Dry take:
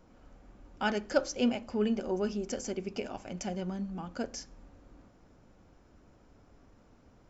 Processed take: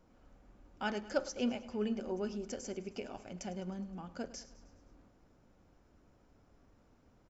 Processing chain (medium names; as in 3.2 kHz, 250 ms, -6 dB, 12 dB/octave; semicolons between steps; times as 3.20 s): feedback delay 104 ms, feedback 58%, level -17 dB; trim -6 dB